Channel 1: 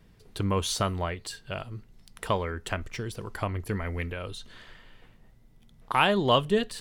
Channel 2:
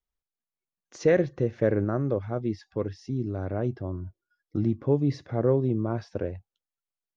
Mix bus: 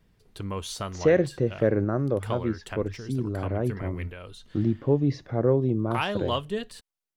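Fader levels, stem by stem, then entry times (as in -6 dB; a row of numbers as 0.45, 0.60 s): -6.0, +1.0 dB; 0.00, 0.00 s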